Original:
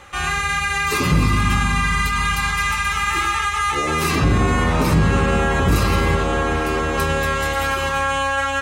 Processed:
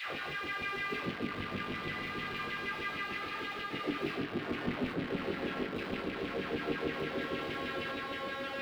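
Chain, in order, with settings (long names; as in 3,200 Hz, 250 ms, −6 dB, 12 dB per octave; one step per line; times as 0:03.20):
sign of each sample alone
high-pass filter 63 Hz
guitar amp tone stack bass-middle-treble 10-0-1
auto-filter high-pass saw down 6.4 Hz 250–3,000 Hz
high-frequency loss of the air 420 metres
bucket-brigade delay 179 ms, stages 2,048, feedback 84%, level −10 dB
on a send at −5.5 dB: convolution reverb, pre-delay 18 ms
on the sum: level +8.5 dB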